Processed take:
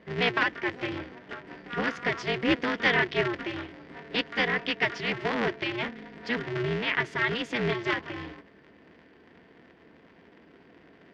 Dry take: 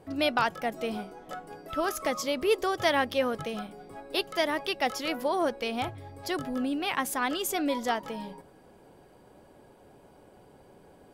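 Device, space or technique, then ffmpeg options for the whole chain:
ring modulator pedal into a guitar cabinet: -af "aeval=exprs='val(0)*sgn(sin(2*PI*120*n/s))':channel_layout=same,highpass=100,equalizer=frequency=110:width_type=q:width=4:gain=-10,equalizer=frequency=580:width_type=q:width=4:gain=-9,equalizer=frequency=830:width_type=q:width=4:gain=-9,equalizer=frequency=1200:width_type=q:width=4:gain=-6,equalizer=frequency=1900:width_type=q:width=4:gain=7,equalizer=frequency=4000:width_type=q:width=4:gain=-5,lowpass=frequency=4200:width=0.5412,lowpass=frequency=4200:width=1.3066,volume=3dB"

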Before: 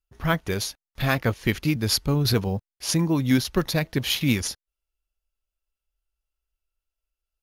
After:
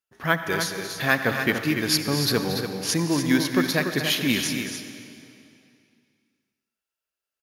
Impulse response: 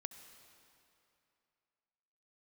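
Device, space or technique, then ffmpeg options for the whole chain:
stadium PA: -filter_complex "[0:a]highpass=200,equalizer=frequency=1700:width_type=o:width=0.37:gain=6.5,aecho=1:1:230.3|288.6:0.282|0.398[link_01];[1:a]atrim=start_sample=2205[link_02];[link_01][link_02]afir=irnorm=-1:irlink=0,volume=4.5dB"

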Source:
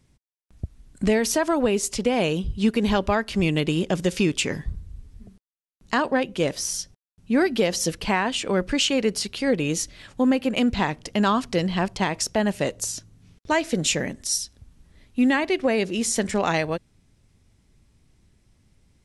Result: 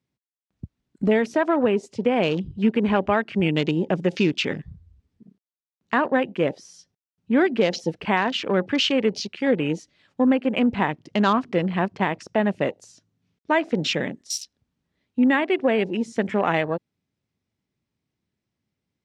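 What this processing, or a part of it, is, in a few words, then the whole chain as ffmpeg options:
over-cleaned archive recording: -af "highpass=140,lowpass=5400,afwtdn=0.02,volume=1.5dB"

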